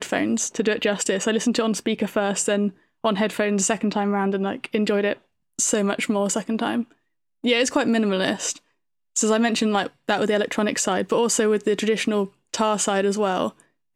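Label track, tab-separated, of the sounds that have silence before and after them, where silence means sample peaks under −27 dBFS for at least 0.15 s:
3.040000	5.130000	sound
5.590000	6.820000	sound
7.440000	8.520000	sound
9.160000	9.870000	sound
10.090000	12.250000	sound
12.540000	13.490000	sound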